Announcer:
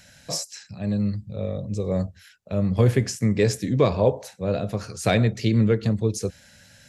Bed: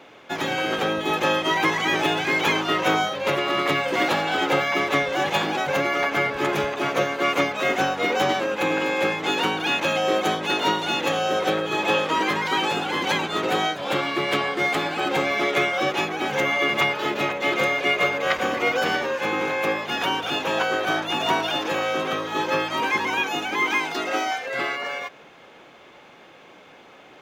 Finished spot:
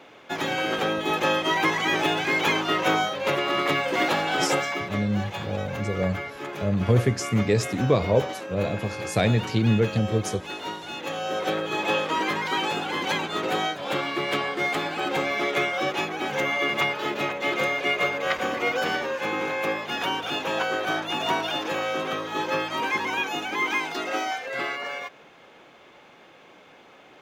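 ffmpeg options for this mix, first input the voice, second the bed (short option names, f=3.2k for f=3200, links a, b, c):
-filter_complex "[0:a]adelay=4100,volume=-1.5dB[a];[1:a]volume=7dB,afade=t=out:st=4.44:d=0.5:silence=0.316228,afade=t=in:st=10.91:d=0.67:silence=0.375837[b];[a][b]amix=inputs=2:normalize=0"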